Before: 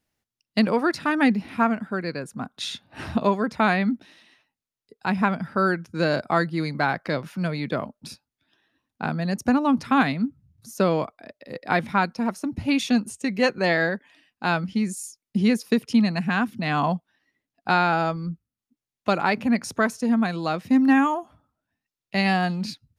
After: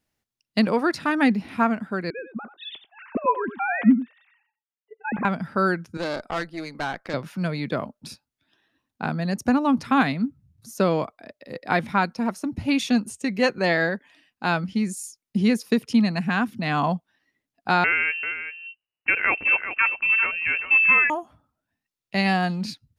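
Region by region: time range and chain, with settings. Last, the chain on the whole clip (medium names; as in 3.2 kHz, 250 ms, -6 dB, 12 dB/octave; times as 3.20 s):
2.10–5.25 s: formants replaced by sine waves + delay 90 ms -12.5 dB
5.97–7.14 s: high-pass 270 Hz + valve stage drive 21 dB, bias 0.75
17.84–21.10 s: frequency inversion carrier 2.9 kHz + delay 390 ms -10 dB
whole clip: none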